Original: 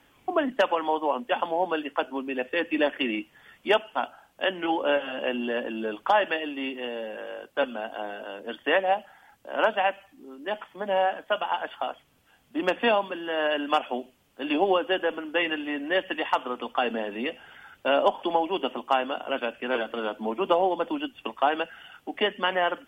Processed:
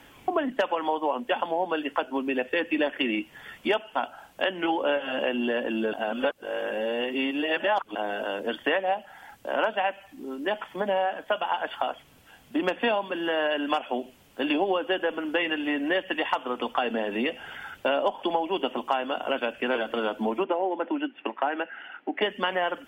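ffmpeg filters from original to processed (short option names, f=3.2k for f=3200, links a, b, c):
-filter_complex "[0:a]asplit=3[a][b][c];[a]afade=t=out:st=20.43:d=0.02[d];[b]highpass=f=260:w=0.5412,highpass=f=260:w=1.3066,equalizer=f=470:t=q:w=4:g=-6,equalizer=f=700:t=q:w=4:g=-4,equalizer=f=1.1k:t=q:w=4:g=-7,lowpass=f=2.3k:w=0.5412,lowpass=f=2.3k:w=1.3066,afade=t=in:st=20.43:d=0.02,afade=t=out:st=22.21:d=0.02[e];[c]afade=t=in:st=22.21:d=0.02[f];[d][e][f]amix=inputs=3:normalize=0,asplit=3[g][h][i];[g]atrim=end=5.932[j];[h]atrim=start=5.928:end=7.952,asetpts=PTS-STARTPTS,areverse[k];[i]atrim=start=7.948[l];[j][k]acrossfade=d=0.004:c1=hsin:c2=hsin[m];[m][l]acrossfade=d=0.004:c1=hsin:c2=hsin,acompressor=threshold=-34dB:ratio=3,bandreject=f=1.2k:w=20,volume=8.5dB"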